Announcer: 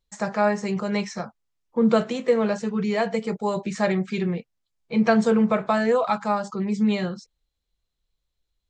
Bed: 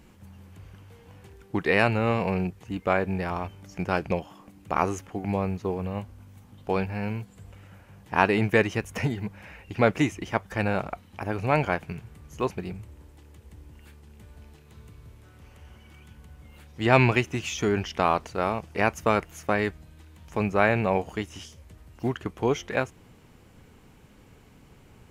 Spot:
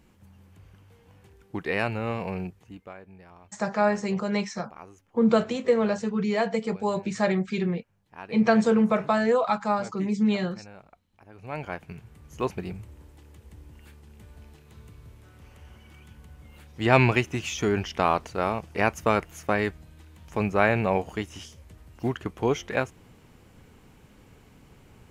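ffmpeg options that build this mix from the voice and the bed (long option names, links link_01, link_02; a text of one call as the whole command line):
ffmpeg -i stem1.wav -i stem2.wav -filter_complex "[0:a]adelay=3400,volume=-1.5dB[link_01];[1:a]volume=15.5dB,afade=type=out:start_time=2.44:duration=0.49:silence=0.16788,afade=type=in:start_time=11.31:duration=1.24:silence=0.0891251[link_02];[link_01][link_02]amix=inputs=2:normalize=0" out.wav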